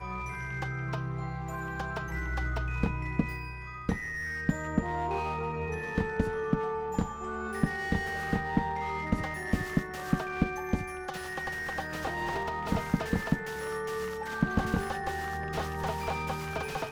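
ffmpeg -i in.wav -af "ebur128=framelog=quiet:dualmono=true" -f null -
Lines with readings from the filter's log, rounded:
Integrated loudness:
  I:         -29.7 LUFS
  Threshold: -39.7 LUFS
Loudness range:
  LRA:         2.2 LU
  Threshold: -49.5 LUFS
  LRA low:   -30.8 LUFS
  LRA high:  -28.6 LUFS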